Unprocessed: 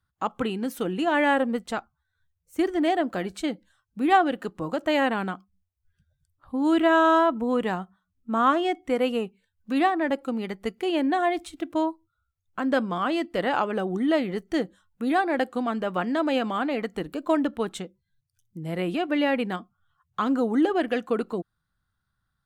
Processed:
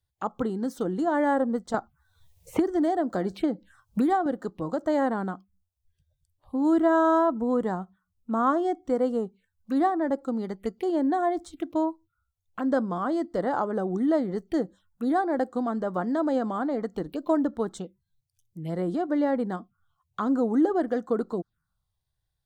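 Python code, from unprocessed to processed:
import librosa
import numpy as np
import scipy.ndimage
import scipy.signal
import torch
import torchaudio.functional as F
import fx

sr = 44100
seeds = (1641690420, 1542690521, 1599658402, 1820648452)

y = fx.dynamic_eq(x, sr, hz=3800.0, q=0.73, threshold_db=-42.0, ratio=4.0, max_db=-7)
y = fx.env_phaser(y, sr, low_hz=220.0, high_hz=2600.0, full_db=-28.0)
y = fx.band_squash(y, sr, depth_pct=100, at=(1.74, 4.26))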